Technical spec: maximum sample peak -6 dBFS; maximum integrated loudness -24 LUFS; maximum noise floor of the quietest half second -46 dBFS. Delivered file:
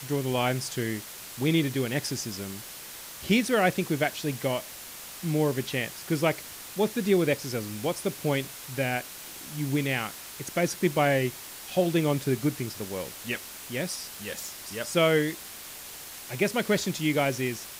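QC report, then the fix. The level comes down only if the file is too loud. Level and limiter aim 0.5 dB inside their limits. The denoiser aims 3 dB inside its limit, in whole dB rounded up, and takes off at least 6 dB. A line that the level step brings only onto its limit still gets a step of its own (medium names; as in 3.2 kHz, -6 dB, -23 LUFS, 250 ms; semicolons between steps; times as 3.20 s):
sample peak -10.0 dBFS: pass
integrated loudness -28.5 LUFS: pass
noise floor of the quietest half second -42 dBFS: fail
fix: noise reduction 7 dB, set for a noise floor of -42 dBFS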